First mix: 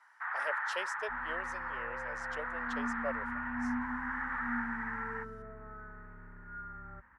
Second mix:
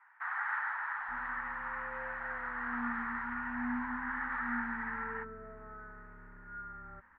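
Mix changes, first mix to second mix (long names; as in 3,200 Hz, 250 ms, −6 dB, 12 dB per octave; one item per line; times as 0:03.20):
speech: muted
second sound: remove high-pass filter 50 Hz 12 dB per octave
master: add low-shelf EQ 92 Hz −11.5 dB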